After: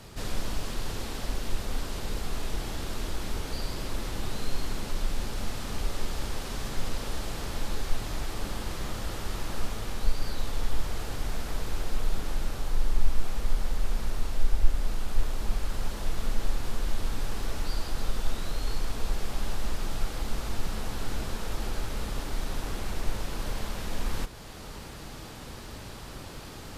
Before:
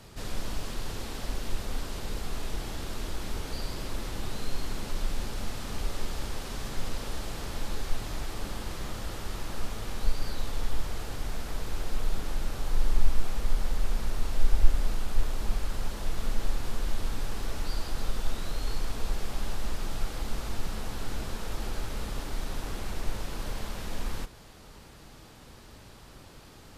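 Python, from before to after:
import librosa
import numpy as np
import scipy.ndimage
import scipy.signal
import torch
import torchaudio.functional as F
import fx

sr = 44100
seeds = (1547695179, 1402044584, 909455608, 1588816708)

p1 = fx.rider(x, sr, range_db=10, speed_s=0.5)
p2 = x + F.gain(torch.from_numpy(p1), 3.0).numpy()
p3 = fx.quant_dither(p2, sr, seeds[0], bits=12, dither='none')
y = F.gain(torch.from_numpy(p3), -6.5).numpy()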